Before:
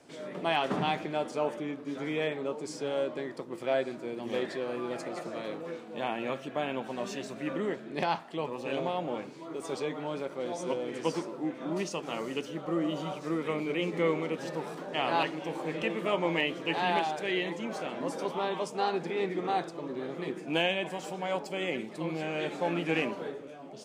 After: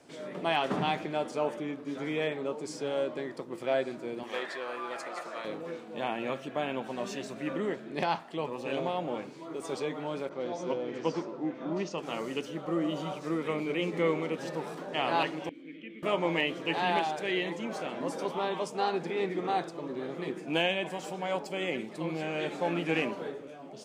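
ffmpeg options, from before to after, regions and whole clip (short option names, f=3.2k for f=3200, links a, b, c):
-filter_complex "[0:a]asettb=1/sr,asplit=3[a][b][c];[a]atrim=end=4.234[d];[b]atrim=start=4.23:end=5.45,asetpts=PTS-STARTPTS,afade=t=in:d=0.004:c=qsin,afade=t=out:st=1.216:d=0.004:c=qsin,highpass=f=910:p=1,equalizer=f=1.2k:w=0.87:g=7.5[e];[c]atrim=start=5.446[f];[d][e]acrossfade=d=0.004:c1=hsin:c2=qsin[g];[g][f]acrossfade=d=0.004:c1=qsin:c2=hsin,asettb=1/sr,asplit=3[h][i][j];[h]atrim=end=10.294[k];[i]atrim=start=10.29:end=11.98,asetpts=PTS-STARTPTS,afade=t=in:d=0.004:c=qsin,afade=t=out:st=1.686:d=0.004:c=qsin,lowpass=f=6.4k:w=0.5412,lowpass=f=6.4k:w=1.3066,adynamicequalizer=threshold=0.00355:dfrequency=1700:dqfactor=0.7:tfrequency=1700:tqfactor=0.7:attack=5:release=100:ratio=0.375:range=2:mode=cutabove:tftype=highshelf[l];[j]atrim=start=11.976[m];[k][l]acrossfade=d=0.004:c1=hsin:c2=qsin[n];[n][m]acrossfade=d=0.004:c1=qsin:c2=hsin,asettb=1/sr,asplit=3[o][p][q];[o]atrim=end=15.494[r];[p]atrim=start=15.49:end=16.03,asetpts=PTS-STARTPTS,afade=t=in:d=0.004:c=qsin,afade=t=out:st=0.536:d=0.004:c=qsin,acrossover=split=3000[s][t];[t]acompressor=threshold=-48dB:ratio=4:attack=1:release=60[u];[s][u]amix=inputs=2:normalize=0,asplit=3[v][w][x];[v]bandpass=f=270:t=q:w=8,volume=0dB[y];[w]bandpass=f=2.29k:t=q:w=8,volume=-6dB[z];[x]bandpass=f=3.01k:t=q:w=8,volume=-9dB[aa];[y][z][aa]amix=inputs=3:normalize=0[ab];[q]atrim=start=16.026[ac];[r][ab]acrossfade=d=0.004:c1=hsin:c2=qsin[ad];[ad][ac]acrossfade=d=0.004:c1=qsin:c2=hsin"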